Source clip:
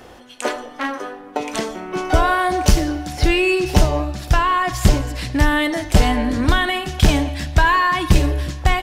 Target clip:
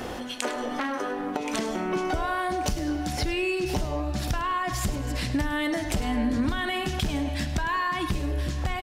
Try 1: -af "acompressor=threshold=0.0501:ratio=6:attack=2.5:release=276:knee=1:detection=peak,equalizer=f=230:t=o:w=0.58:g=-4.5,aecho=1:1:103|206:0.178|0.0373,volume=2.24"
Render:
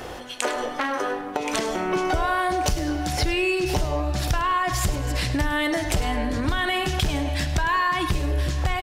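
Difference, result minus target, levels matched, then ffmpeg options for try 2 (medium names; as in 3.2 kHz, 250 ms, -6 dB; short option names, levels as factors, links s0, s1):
compression: peak gain reduction -5 dB; 250 Hz band -3.5 dB
-af "acompressor=threshold=0.0251:ratio=6:attack=2.5:release=276:knee=1:detection=peak,equalizer=f=230:t=o:w=0.58:g=5,aecho=1:1:103|206:0.178|0.0373,volume=2.24"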